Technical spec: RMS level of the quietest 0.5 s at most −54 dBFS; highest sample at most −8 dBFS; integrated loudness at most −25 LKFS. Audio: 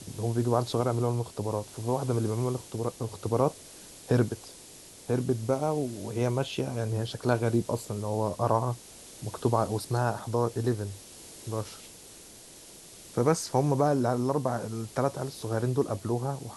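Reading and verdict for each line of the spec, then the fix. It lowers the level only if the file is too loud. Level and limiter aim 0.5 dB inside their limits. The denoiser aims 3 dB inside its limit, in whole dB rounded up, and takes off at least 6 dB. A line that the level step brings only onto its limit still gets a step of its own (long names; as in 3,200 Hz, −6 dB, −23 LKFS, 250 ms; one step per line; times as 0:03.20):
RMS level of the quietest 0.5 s −49 dBFS: out of spec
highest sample −9.5 dBFS: in spec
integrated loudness −29.5 LKFS: in spec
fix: broadband denoise 8 dB, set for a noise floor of −49 dBFS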